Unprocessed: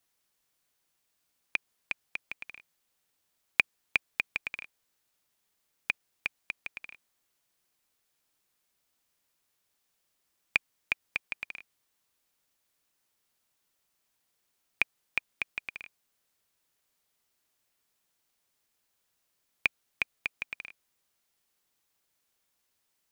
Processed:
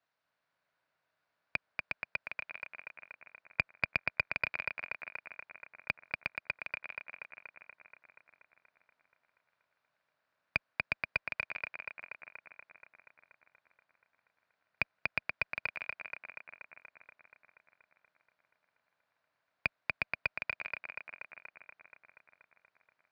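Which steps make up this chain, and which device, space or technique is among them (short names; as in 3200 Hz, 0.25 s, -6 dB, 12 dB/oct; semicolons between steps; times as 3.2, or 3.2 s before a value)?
analogue delay pedal into a guitar amplifier (analogue delay 0.239 s, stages 4096, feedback 72%, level -3 dB; tube stage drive 16 dB, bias 0.6; speaker cabinet 100–4100 Hz, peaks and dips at 220 Hz -4 dB, 360 Hz -7 dB, 630 Hz +8 dB, 1000 Hz +4 dB, 1500 Hz +7 dB, 3200 Hz -6 dB)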